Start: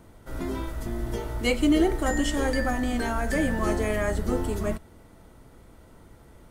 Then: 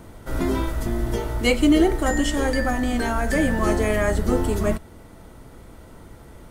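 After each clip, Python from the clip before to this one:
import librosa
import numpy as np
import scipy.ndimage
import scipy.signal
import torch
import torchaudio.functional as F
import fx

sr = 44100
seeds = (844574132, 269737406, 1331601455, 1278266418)

y = fx.rider(x, sr, range_db=4, speed_s=2.0)
y = y * librosa.db_to_amplitude(4.5)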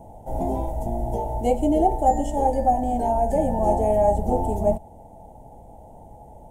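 y = fx.curve_eq(x, sr, hz=(220.0, 360.0, 840.0, 1200.0, 3000.0, 4400.0, 6900.0), db=(0, -5, 15, -26, -16, -22, -7))
y = y * librosa.db_to_amplitude(-2.5)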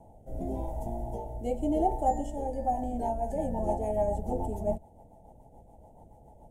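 y = fx.rotary_switch(x, sr, hz=0.9, then_hz=7.0, switch_at_s=2.5)
y = y * librosa.db_to_amplitude(-7.0)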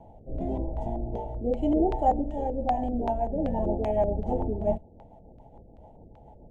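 y = fx.filter_lfo_lowpass(x, sr, shape='square', hz=2.6, low_hz=420.0, high_hz=3200.0, q=1.4)
y = y * librosa.db_to_amplitude(3.5)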